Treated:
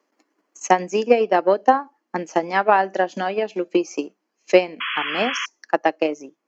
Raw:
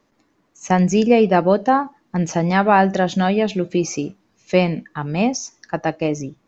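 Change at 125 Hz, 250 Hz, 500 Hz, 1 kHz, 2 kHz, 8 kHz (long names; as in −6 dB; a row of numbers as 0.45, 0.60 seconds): −17.5 dB, −8.0 dB, −0.5 dB, −0.5 dB, +0.5 dB, can't be measured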